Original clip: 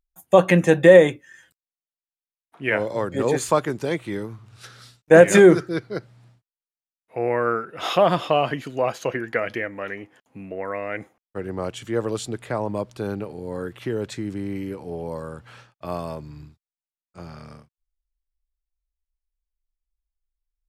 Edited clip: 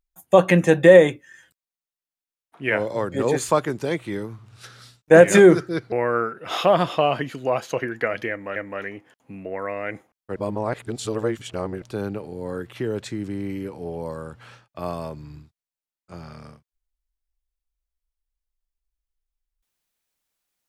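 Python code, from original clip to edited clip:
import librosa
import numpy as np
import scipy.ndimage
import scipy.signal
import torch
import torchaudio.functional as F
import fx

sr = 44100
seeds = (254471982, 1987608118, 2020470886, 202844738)

y = fx.edit(x, sr, fx.cut(start_s=5.92, length_s=1.32),
    fx.repeat(start_s=9.62, length_s=0.26, count=2),
    fx.reverse_span(start_s=11.42, length_s=1.46), tone=tone)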